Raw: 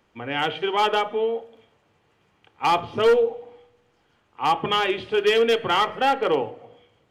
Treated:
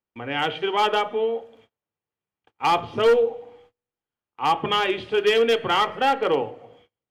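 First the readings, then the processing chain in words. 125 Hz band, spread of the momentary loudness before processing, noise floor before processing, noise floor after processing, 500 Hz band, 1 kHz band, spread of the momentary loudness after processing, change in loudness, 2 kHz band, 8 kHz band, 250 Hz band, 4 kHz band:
0.0 dB, 8 LU, -66 dBFS, under -85 dBFS, 0.0 dB, 0.0 dB, 8 LU, 0.0 dB, 0.0 dB, n/a, 0.0 dB, 0.0 dB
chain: gate -54 dBFS, range -28 dB

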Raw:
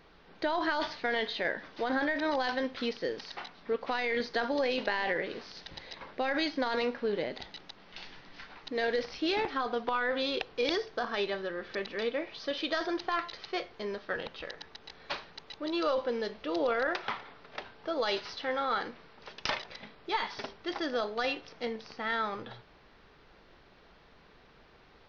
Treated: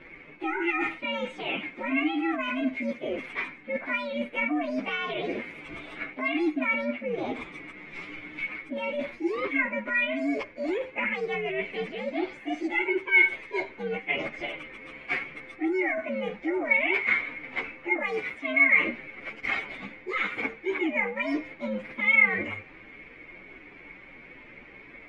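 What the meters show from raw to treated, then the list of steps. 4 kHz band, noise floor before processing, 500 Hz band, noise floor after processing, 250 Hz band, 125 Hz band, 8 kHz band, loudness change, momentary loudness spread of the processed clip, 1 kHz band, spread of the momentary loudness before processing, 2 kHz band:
-3.5 dB, -59 dBFS, +0.5 dB, -49 dBFS, +6.0 dB, +5.5 dB, n/a, +5.5 dB, 19 LU, -1.0 dB, 15 LU, +9.5 dB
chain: inharmonic rescaling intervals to 128%; reverse; compressor 6:1, threshold -41 dBFS, peak gain reduction 12.5 dB; reverse; synth low-pass 2200 Hz, resonance Q 14; bell 300 Hz +12.5 dB 0.96 oct; gain +7.5 dB

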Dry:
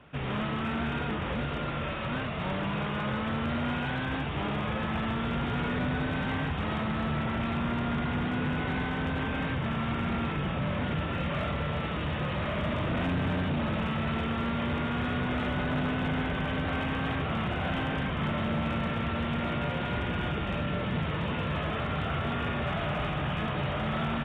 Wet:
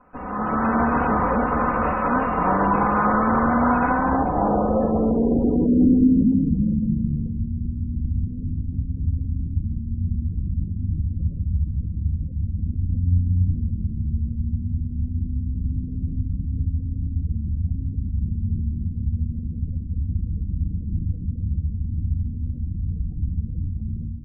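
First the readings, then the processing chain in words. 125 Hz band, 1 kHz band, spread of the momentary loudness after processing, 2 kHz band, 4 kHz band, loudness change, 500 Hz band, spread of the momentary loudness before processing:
+8.0 dB, +8.5 dB, 9 LU, -0.5 dB, under -30 dB, +7.5 dB, +6.0 dB, 2 LU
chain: minimum comb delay 4 ms; AGC gain up to 11.5 dB; low-pass sweep 1100 Hz -> 100 Hz, 3.86–7.61; spectral gate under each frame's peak -30 dB strong

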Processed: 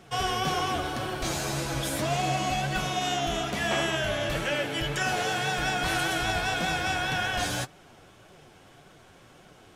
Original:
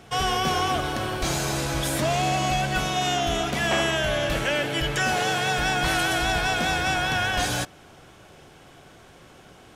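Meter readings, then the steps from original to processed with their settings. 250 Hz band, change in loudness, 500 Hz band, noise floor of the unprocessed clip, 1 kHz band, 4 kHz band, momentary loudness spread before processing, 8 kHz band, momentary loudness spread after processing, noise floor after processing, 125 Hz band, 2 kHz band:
-4.0 dB, -4.0 dB, -4.0 dB, -50 dBFS, -4.0 dB, -4.0 dB, 4 LU, -4.0 dB, 4 LU, -54 dBFS, -4.0 dB, -4.0 dB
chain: flange 1.8 Hz, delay 4.9 ms, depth 6.5 ms, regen +45%

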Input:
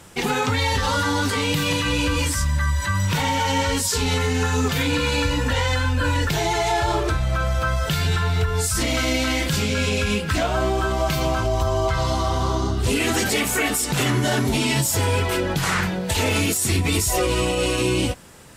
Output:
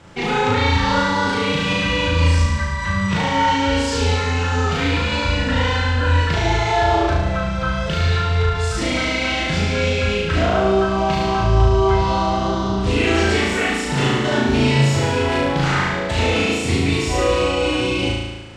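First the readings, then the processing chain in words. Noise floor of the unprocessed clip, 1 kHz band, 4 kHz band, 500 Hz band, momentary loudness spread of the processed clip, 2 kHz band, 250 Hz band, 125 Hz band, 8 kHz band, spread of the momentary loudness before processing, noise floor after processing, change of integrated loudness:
-26 dBFS, +4.5 dB, +1.5 dB, +4.0 dB, 4 LU, +3.0 dB, +3.5 dB, +3.0 dB, -7.0 dB, 2 LU, -23 dBFS, +3.0 dB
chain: air absorption 130 m; flutter echo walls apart 6.2 m, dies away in 1.2 s

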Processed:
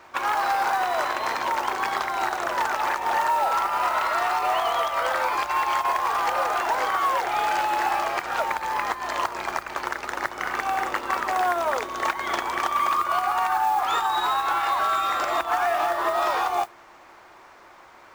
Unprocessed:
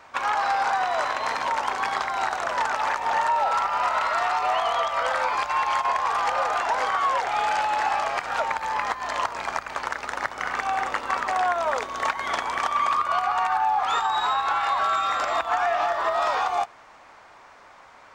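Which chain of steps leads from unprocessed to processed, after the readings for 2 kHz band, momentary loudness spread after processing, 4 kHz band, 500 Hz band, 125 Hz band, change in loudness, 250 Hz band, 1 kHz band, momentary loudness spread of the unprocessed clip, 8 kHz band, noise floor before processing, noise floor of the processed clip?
0.0 dB, 5 LU, 0.0 dB, +0.5 dB, n/a, 0.0 dB, +5.5 dB, 0.0 dB, 5 LU, +2.0 dB, -50 dBFS, -49 dBFS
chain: bell 350 Hz +11.5 dB 0.22 oct; modulation noise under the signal 23 dB

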